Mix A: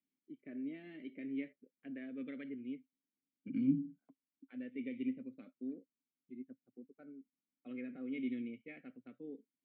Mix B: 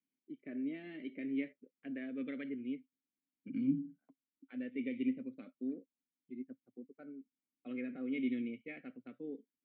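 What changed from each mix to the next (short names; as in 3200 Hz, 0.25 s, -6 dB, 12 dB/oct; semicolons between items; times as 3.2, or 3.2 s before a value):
first voice +4.5 dB; master: add low shelf 140 Hz -5 dB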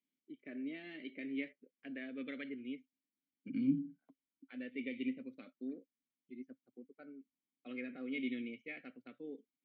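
first voice: add low shelf 340 Hz -7 dB; master: remove air absorption 260 m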